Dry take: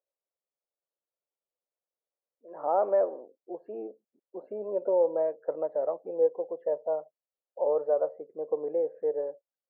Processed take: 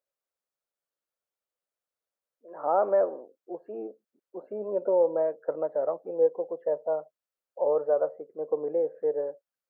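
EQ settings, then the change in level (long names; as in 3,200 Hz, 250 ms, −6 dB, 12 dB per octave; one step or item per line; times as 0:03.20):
dynamic equaliser 160 Hz, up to +6 dB, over −44 dBFS, Q 0.75
parametric band 1,400 Hz +6.5 dB 0.7 octaves
0.0 dB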